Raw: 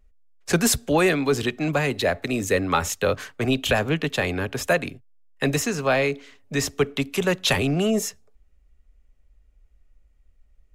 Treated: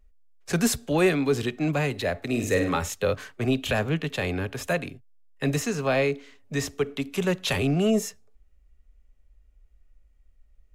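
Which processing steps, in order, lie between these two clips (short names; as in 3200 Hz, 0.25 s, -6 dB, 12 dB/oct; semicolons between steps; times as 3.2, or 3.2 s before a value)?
2.26–2.77 flutter echo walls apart 8.6 m, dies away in 0.44 s; harmonic-percussive split percussive -7 dB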